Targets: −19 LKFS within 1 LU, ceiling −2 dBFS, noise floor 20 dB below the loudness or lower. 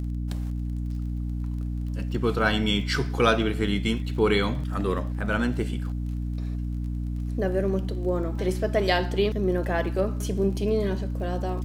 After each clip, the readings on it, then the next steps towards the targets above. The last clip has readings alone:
crackle rate 27 per second; mains hum 60 Hz; hum harmonics up to 300 Hz; level of the hum −27 dBFS; integrated loudness −26.5 LKFS; sample peak −5.5 dBFS; target loudness −19.0 LKFS
→ click removal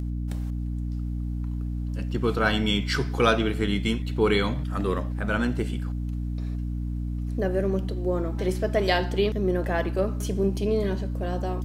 crackle rate 0.086 per second; mains hum 60 Hz; hum harmonics up to 300 Hz; level of the hum −27 dBFS
→ mains-hum notches 60/120/180/240/300 Hz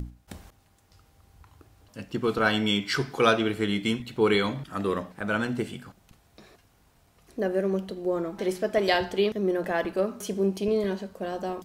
mains hum none found; integrated loudness −27.0 LKFS; sample peak −6.5 dBFS; target loudness −19.0 LKFS
→ level +8 dB
brickwall limiter −2 dBFS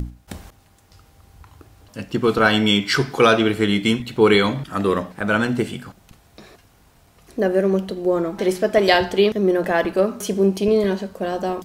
integrated loudness −19.0 LKFS; sample peak −2.0 dBFS; background noise floor −54 dBFS

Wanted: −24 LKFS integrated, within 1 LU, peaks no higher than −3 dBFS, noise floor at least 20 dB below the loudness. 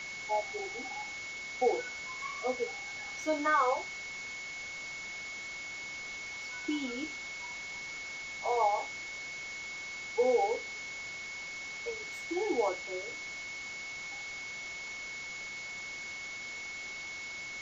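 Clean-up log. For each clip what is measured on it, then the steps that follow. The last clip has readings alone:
interfering tone 2,200 Hz; level of the tone −40 dBFS; background noise floor −42 dBFS; target noise floor −56 dBFS; integrated loudness −35.5 LKFS; sample peak −17.5 dBFS; target loudness −24.0 LKFS
→ notch filter 2,200 Hz, Q 30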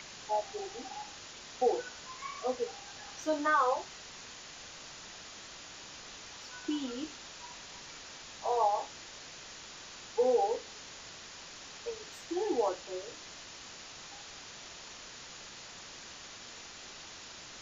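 interfering tone none found; background noise floor −49 dBFS; target noise floor −58 dBFS
→ broadband denoise 9 dB, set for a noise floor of −49 dBFS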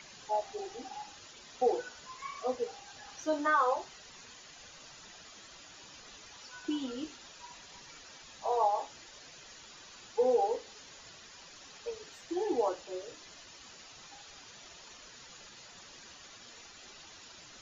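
background noise floor −53 dBFS; target noise floor −54 dBFS
→ broadband denoise 6 dB, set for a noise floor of −53 dBFS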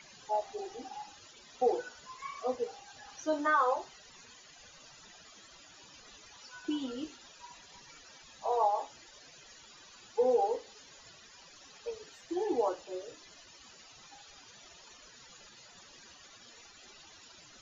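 background noise floor −56 dBFS; integrated loudness −34.0 LKFS; sample peak −18.5 dBFS; target loudness −24.0 LKFS
→ level +10 dB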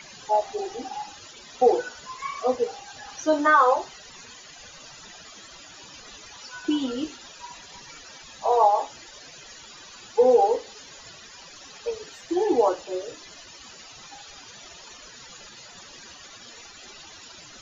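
integrated loudness −24.0 LKFS; sample peak −8.5 dBFS; background noise floor −46 dBFS

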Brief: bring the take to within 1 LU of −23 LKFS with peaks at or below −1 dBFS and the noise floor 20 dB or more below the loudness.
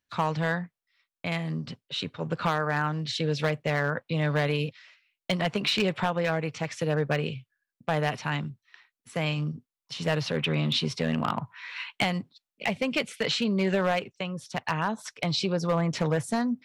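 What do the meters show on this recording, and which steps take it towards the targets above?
share of clipped samples 0.5%; peaks flattened at −17.5 dBFS; integrated loudness −28.5 LKFS; sample peak −17.5 dBFS; target loudness −23.0 LKFS
→ clipped peaks rebuilt −17.5 dBFS
level +5.5 dB

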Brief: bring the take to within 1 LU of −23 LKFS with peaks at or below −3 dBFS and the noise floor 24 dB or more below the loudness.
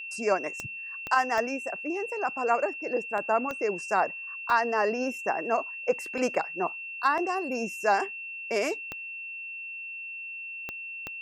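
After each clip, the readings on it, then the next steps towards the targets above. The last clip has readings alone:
number of clicks 8; interfering tone 2,700 Hz; level of the tone −36 dBFS; integrated loudness −29.5 LKFS; sample peak −11.0 dBFS; target loudness −23.0 LKFS
→ click removal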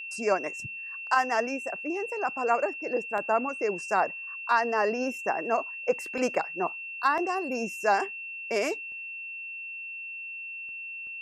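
number of clicks 0; interfering tone 2,700 Hz; level of the tone −36 dBFS
→ notch filter 2,700 Hz, Q 30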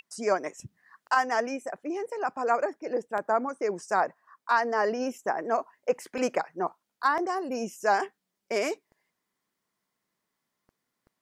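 interfering tone none found; integrated loudness −29.0 LKFS; sample peak −11.5 dBFS; target loudness −23.0 LKFS
→ level +6 dB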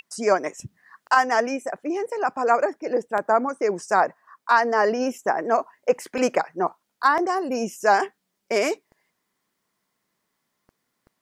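integrated loudness −23.0 LKFS; sample peak −5.5 dBFS; background noise floor −77 dBFS

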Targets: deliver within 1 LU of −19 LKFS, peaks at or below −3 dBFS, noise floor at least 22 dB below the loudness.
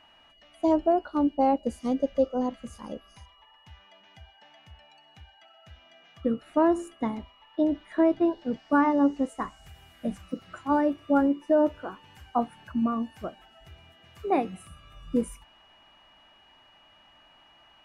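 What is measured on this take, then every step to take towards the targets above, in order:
interfering tone 2,900 Hz; level of the tone −58 dBFS; integrated loudness −27.0 LKFS; sample peak −12.0 dBFS; target loudness −19.0 LKFS
→ notch filter 2,900 Hz, Q 30
level +8 dB

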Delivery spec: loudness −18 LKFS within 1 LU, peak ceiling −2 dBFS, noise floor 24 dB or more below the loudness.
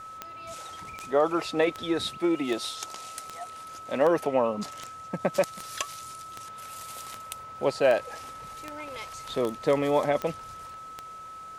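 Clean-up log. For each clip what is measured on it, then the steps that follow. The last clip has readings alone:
number of clicks 15; interfering tone 1,300 Hz; level of the tone −40 dBFS; integrated loudness −28.5 LKFS; sample peak −11.0 dBFS; target loudness −18.0 LKFS
→ click removal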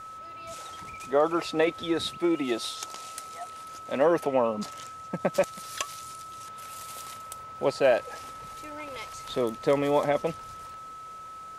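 number of clicks 0; interfering tone 1,300 Hz; level of the tone −40 dBFS
→ notch filter 1,300 Hz, Q 30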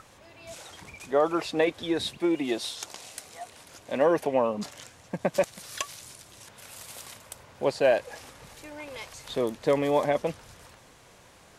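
interfering tone none found; integrated loudness −28.0 LKFS; sample peak −11.0 dBFS; target loudness −18.0 LKFS
→ level +10 dB
brickwall limiter −2 dBFS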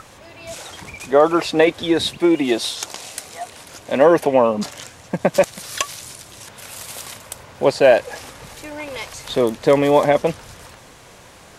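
integrated loudness −18.0 LKFS; sample peak −2.0 dBFS; background noise floor −45 dBFS

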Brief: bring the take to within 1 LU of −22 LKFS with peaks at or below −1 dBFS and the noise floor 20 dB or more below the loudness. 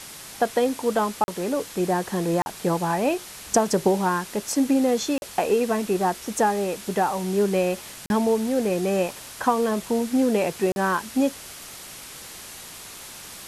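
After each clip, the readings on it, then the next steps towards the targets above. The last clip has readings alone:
number of dropouts 5; longest dropout 41 ms; background noise floor −41 dBFS; target noise floor −44 dBFS; integrated loudness −24.0 LKFS; sample peak −7.0 dBFS; target loudness −22.0 LKFS
→ repair the gap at 0:01.24/0:02.42/0:05.18/0:08.06/0:10.72, 41 ms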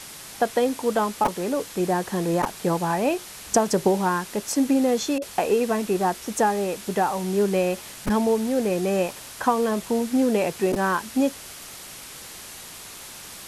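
number of dropouts 0; background noise floor −41 dBFS; target noise floor −44 dBFS
→ broadband denoise 6 dB, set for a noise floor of −41 dBFS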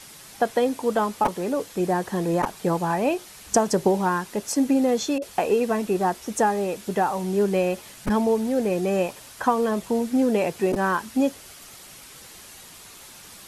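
background noise floor −45 dBFS; integrated loudness −24.0 LKFS; sample peak −7.0 dBFS; target loudness −22.0 LKFS
→ level +2 dB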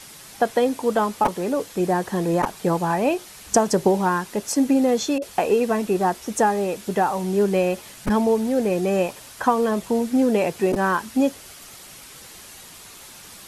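integrated loudness −22.0 LKFS; sample peak −5.0 dBFS; background noise floor −43 dBFS

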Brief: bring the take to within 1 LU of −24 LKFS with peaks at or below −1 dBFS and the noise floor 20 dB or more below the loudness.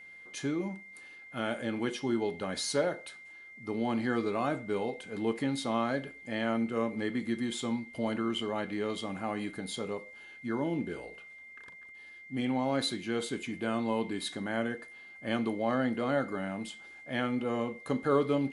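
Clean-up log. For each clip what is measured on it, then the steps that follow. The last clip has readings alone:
interfering tone 2,100 Hz; level of the tone −48 dBFS; integrated loudness −33.0 LKFS; sample peak −15.5 dBFS; target loudness −24.0 LKFS
→ notch filter 2,100 Hz, Q 30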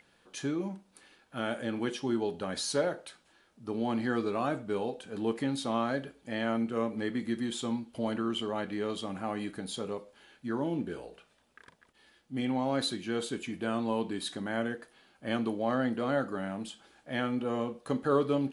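interfering tone none found; integrated loudness −33.5 LKFS; sample peak −16.0 dBFS; target loudness −24.0 LKFS
→ level +9.5 dB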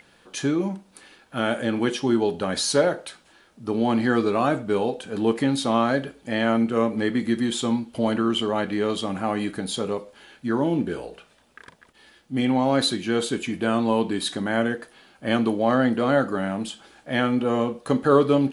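integrated loudness −24.0 LKFS; sample peak −6.5 dBFS; background noise floor −58 dBFS

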